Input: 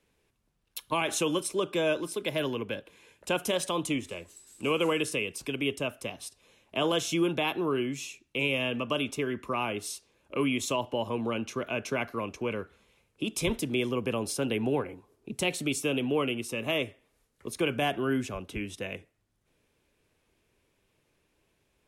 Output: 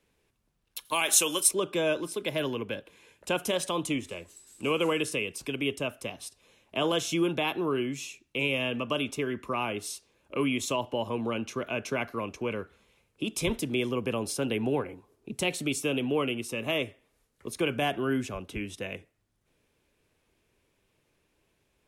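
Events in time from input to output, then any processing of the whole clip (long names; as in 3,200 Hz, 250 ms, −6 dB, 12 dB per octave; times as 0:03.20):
0:00.85–0:01.51: RIAA equalisation recording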